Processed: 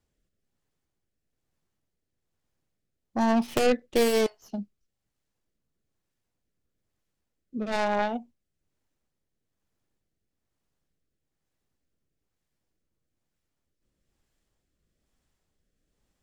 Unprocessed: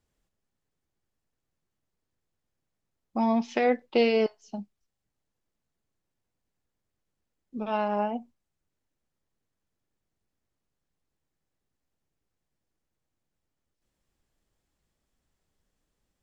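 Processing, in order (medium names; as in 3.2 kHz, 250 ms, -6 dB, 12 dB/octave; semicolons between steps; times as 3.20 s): tracing distortion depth 0.42 ms; rotary cabinet horn 1.1 Hz; trim +3.5 dB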